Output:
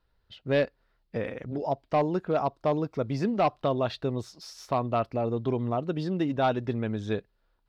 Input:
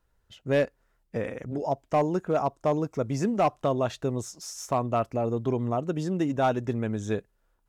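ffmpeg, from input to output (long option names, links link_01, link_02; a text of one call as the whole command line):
ffmpeg -i in.wav -af "highshelf=frequency=5500:width_type=q:width=3:gain=-8,volume=-1dB" out.wav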